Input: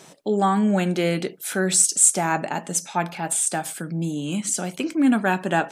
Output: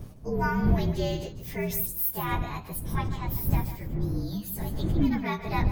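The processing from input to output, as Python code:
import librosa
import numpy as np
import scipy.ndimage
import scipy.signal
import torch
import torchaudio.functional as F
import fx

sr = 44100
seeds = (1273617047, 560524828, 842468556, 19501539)

y = fx.partial_stretch(x, sr, pct=116)
y = fx.dmg_wind(y, sr, seeds[0], corner_hz=120.0, level_db=-24.0)
y = y + 10.0 ** (-11.5 / 20.0) * np.pad(y, (int(149 * sr / 1000.0), 0))[:len(y)]
y = y * 10.0 ** (-6.5 / 20.0)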